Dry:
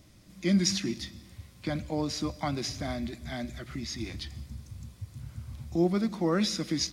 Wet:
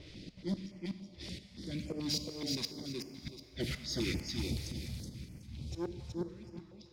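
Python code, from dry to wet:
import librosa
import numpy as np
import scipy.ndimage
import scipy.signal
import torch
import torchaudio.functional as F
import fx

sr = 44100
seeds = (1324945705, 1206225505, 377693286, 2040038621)

p1 = fx.auto_swell(x, sr, attack_ms=613.0)
p2 = fx.curve_eq(p1, sr, hz=(110.0, 180.0, 470.0, 1000.0, 2200.0, 4400.0, 6800.0, 13000.0), db=(0, 6, 8, -15, 6, 11, 4, 6))
p3 = fx.gate_flip(p2, sr, shuts_db=-25.0, range_db=-36)
p4 = fx.leveller(p3, sr, passes=2)
p5 = fx.env_lowpass(p4, sr, base_hz=2100.0, full_db=-31.5)
p6 = p5 + fx.echo_feedback(p5, sr, ms=373, feedback_pct=27, wet_db=-3.5, dry=0)
p7 = fx.rev_plate(p6, sr, seeds[0], rt60_s=2.8, hf_ratio=0.75, predelay_ms=0, drr_db=9.0)
p8 = fx.filter_held_notch(p7, sr, hz=7.0, low_hz=220.0, high_hz=3800.0)
y = F.gain(torch.from_numpy(p8), -2.5).numpy()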